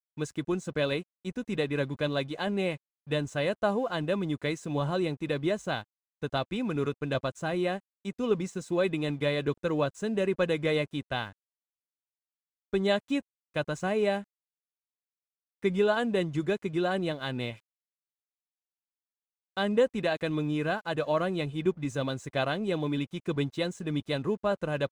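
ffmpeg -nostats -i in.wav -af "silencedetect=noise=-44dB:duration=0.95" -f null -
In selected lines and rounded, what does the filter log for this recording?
silence_start: 11.32
silence_end: 12.73 | silence_duration: 1.41
silence_start: 14.23
silence_end: 15.63 | silence_duration: 1.40
silence_start: 17.56
silence_end: 19.57 | silence_duration: 2.01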